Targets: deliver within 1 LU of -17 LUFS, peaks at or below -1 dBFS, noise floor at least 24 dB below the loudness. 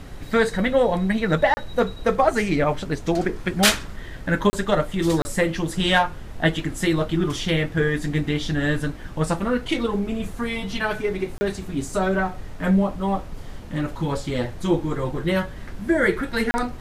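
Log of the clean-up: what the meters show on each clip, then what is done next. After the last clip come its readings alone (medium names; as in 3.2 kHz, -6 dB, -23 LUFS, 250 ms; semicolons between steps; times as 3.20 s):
dropouts 5; longest dropout 30 ms; noise floor -37 dBFS; noise floor target -47 dBFS; loudness -23.0 LUFS; peak level -2.0 dBFS; loudness target -17.0 LUFS
-> interpolate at 1.54/4.50/5.22/11.38/16.51 s, 30 ms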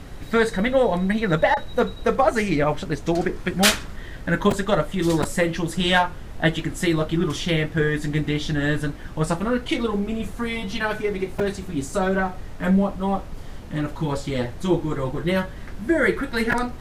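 dropouts 0; noise floor -37 dBFS; noise floor target -47 dBFS
-> noise print and reduce 10 dB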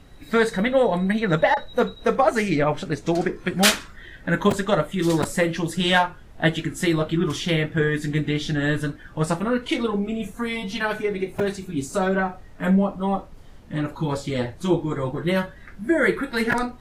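noise floor -45 dBFS; noise floor target -47 dBFS
-> noise print and reduce 6 dB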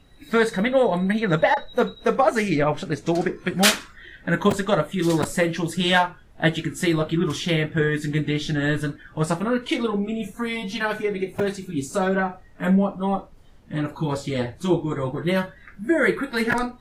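noise floor -49 dBFS; loudness -23.0 LUFS; peak level -2.0 dBFS; loudness target -17.0 LUFS
-> trim +6 dB; peak limiter -1 dBFS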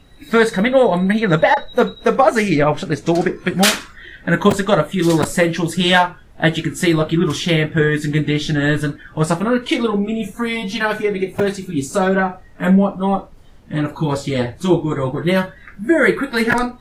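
loudness -17.5 LUFS; peak level -1.0 dBFS; noise floor -43 dBFS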